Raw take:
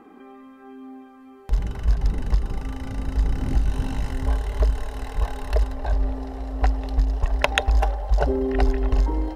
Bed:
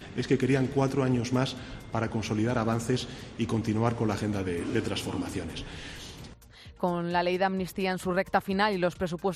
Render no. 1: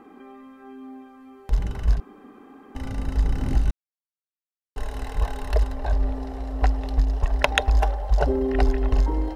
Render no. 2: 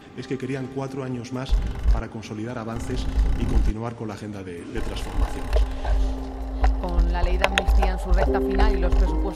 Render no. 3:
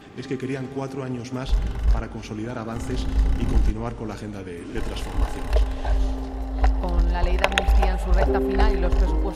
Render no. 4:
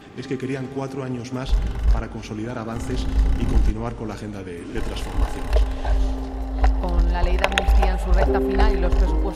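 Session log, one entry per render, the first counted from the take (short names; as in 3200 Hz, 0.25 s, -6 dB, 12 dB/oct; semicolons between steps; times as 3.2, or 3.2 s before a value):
2–2.75 room tone; 3.71–4.76 mute
add bed -3.5 dB
reverse echo 56 ms -16.5 dB; spring tank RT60 3 s, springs 34/59 ms, chirp 50 ms, DRR 16.5 dB
gain +1.5 dB; limiter -1 dBFS, peak gain reduction 1.5 dB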